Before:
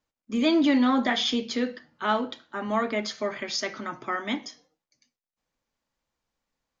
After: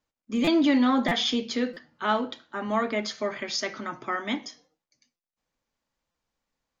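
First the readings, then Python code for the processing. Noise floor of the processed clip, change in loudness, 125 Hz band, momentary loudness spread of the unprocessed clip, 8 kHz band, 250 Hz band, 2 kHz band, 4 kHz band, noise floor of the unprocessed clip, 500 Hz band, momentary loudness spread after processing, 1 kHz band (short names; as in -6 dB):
under -85 dBFS, 0.0 dB, +3.0 dB, 12 LU, n/a, 0.0 dB, -0.5 dB, 0.0 dB, under -85 dBFS, 0.0 dB, 12 LU, 0.0 dB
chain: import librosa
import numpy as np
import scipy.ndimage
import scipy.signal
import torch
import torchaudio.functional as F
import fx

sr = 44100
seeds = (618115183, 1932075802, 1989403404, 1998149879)

y = fx.buffer_glitch(x, sr, at_s=(0.44, 1.08, 1.73, 5.16, 6.11), block=256, repeats=5)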